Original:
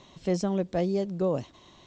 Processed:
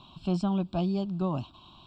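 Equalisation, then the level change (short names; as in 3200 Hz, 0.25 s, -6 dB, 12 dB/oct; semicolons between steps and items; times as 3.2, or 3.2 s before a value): Butterworth band-stop 2000 Hz, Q 2.8; fixed phaser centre 1800 Hz, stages 6; +3.5 dB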